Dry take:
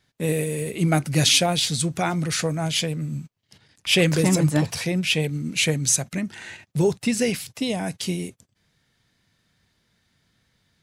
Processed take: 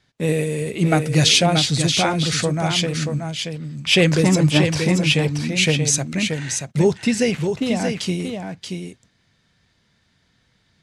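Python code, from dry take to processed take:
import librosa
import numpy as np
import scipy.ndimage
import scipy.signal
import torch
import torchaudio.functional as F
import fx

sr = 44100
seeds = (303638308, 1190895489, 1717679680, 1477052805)

y = fx.median_filter(x, sr, points=9, at=(7.31, 7.99))
y = scipy.signal.sosfilt(scipy.signal.butter(2, 7400.0, 'lowpass', fs=sr, output='sos'), y)
y = y + 10.0 ** (-6.0 / 20.0) * np.pad(y, (int(630 * sr / 1000.0), 0))[:len(y)]
y = y * 10.0 ** (3.5 / 20.0)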